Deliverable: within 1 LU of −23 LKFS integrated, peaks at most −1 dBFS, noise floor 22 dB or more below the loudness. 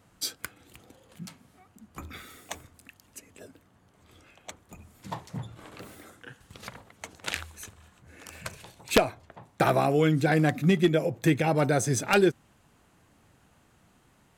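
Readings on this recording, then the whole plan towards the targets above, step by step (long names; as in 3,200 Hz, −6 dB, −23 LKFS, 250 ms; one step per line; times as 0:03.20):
integrated loudness −25.5 LKFS; sample peak −6.0 dBFS; target loudness −23.0 LKFS
→ level +2.5 dB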